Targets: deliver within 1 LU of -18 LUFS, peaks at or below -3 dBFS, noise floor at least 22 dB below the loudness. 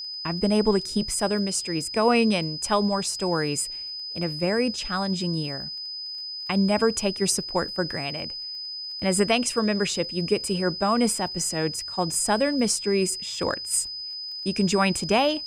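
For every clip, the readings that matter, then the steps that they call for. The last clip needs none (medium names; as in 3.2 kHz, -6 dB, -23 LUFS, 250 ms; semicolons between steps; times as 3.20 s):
tick rate 22 per s; steady tone 5 kHz; tone level -32 dBFS; loudness -25.0 LUFS; peak level -7.5 dBFS; loudness target -18.0 LUFS
-> de-click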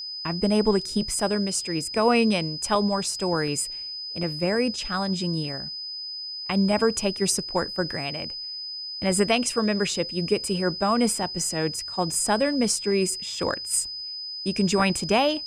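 tick rate 0 per s; steady tone 5 kHz; tone level -32 dBFS
-> band-stop 5 kHz, Q 30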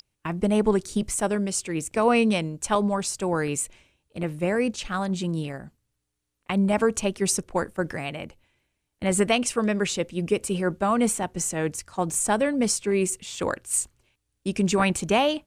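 steady tone not found; loudness -25.0 LUFS; peak level -8.0 dBFS; loudness target -18.0 LUFS
-> trim +7 dB; peak limiter -3 dBFS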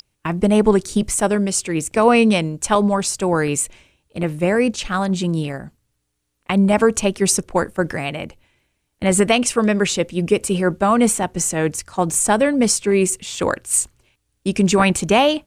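loudness -18.5 LUFS; peak level -3.0 dBFS; noise floor -72 dBFS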